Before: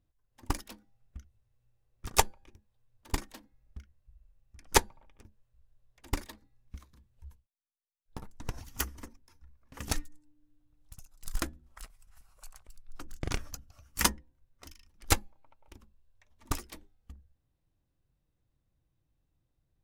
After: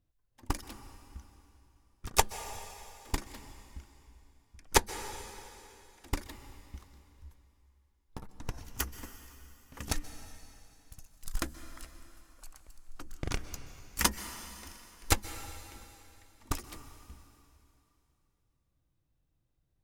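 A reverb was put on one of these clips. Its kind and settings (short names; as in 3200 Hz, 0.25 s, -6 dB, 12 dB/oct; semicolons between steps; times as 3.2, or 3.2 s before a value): plate-style reverb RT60 2.9 s, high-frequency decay 1×, pre-delay 0.115 s, DRR 11 dB; gain -1 dB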